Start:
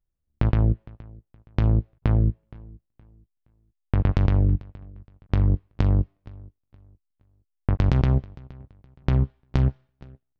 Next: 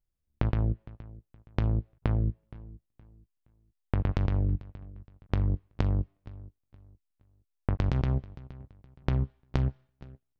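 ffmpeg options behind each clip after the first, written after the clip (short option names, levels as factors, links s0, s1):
-af "acompressor=threshold=0.1:ratio=4,volume=0.75"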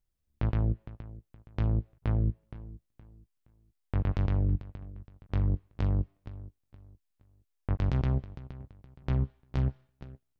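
-af "alimiter=limit=0.106:level=0:latency=1:release=23,volume=1.19"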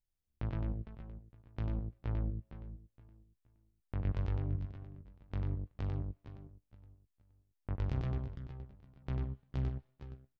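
-af "aecho=1:1:95|456:0.596|0.224,volume=0.376"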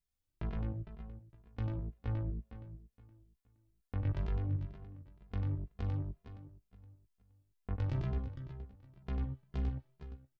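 -filter_complex "[0:a]asplit=2[s0][s1];[s1]adelay=2.5,afreqshift=2.1[s2];[s0][s2]amix=inputs=2:normalize=1,volume=1.41"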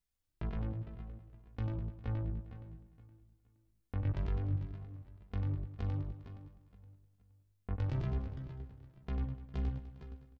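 -af "aecho=1:1:202|404|606|808:0.2|0.0838|0.0352|0.0148"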